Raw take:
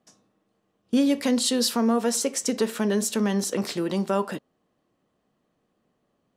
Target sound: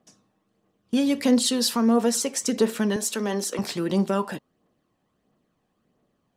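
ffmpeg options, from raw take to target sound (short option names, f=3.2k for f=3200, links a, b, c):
-filter_complex "[0:a]asettb=1/sr,asplit=3[a][b][c];[a]atrim=end=2.964[d];[b]atrim=start=2.96:end=3.59,asetpts=PTS-STARTPTS,afade=t=in:d=0.004:c=qsin,afade=t=out:st=0.626:d=0.004:c=qsin,highpass=330[e];[c]atrim=start=3.586[f];[d][e]acrossfade=d=0.004:c1=hsin:c2=qsin[g];[g][f]acrossfade=d=0.004:c1=qsin:c2=hsin,aphaser=in_gain=1:out_gain=1:delay=1.3:decay=0.38:speed=1.5:type=triangular"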